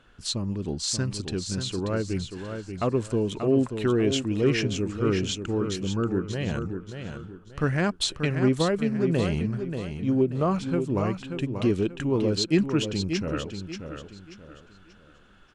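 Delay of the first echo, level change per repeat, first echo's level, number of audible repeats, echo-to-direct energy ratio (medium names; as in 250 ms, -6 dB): 584 ms, -9.5 dB, -7.5 dB, 3, -7.0 dB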